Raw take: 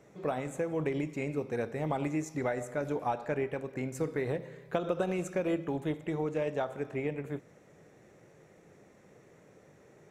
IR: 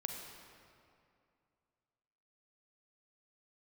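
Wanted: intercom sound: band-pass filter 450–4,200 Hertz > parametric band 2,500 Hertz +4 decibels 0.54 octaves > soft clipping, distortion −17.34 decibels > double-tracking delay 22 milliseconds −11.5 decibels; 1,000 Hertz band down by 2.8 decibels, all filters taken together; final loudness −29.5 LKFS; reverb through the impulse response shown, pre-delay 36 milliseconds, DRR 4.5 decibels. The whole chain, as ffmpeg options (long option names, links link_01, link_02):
-filter_complex "[0:a]equalizer=frequency=1000:width_type=o:gain=-3.5,asplit=2[link_01][link_02];[1:a]atrim=start_sample=2205,adelay=36[link_03];[link_02][link_03]afir=irnorm=-1:irlink=0,volume=-4.5dB[link_04];[link_01][link_04]amix=inputs=2:normalize=0,highpass=450,lowpass=4200,equalizer=frequency=2500:width_type=o:width=0.54:gain=4,asoftclip=threshold=-27.5dB,asplit=2[link_05][link_06];[link_06]adelay=22,volume=-11.5dB[link_07];[link_05][link_07]amix=inputs=2:normalize=0,volume=8.5dB"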